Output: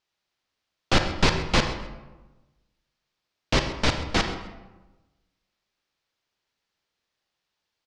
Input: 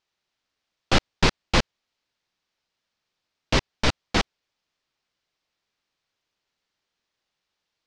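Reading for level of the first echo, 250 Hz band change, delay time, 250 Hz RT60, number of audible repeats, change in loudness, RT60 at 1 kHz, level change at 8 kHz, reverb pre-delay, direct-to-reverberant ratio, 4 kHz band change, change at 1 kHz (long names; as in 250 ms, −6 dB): −16.5 dB, 0.0 dB, 131 ms, 1.3 s, 1, 0.0 dB, 1.1 s, −0.5 dB, 33 ms, 5.5 dB, −0.5 dB, 0.0 dB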